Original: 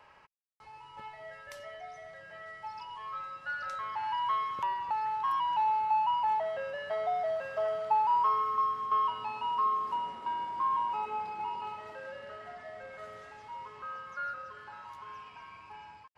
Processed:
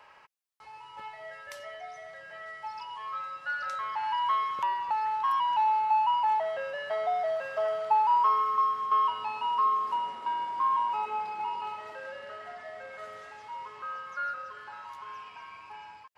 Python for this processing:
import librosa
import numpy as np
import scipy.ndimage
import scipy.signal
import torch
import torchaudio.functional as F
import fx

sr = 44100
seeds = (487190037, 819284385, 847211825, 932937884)

y = fx.low_shelf(x, sr, hz=290.0, db=-10.5)
y = y * 10.0 ** (4.0 / 20.0)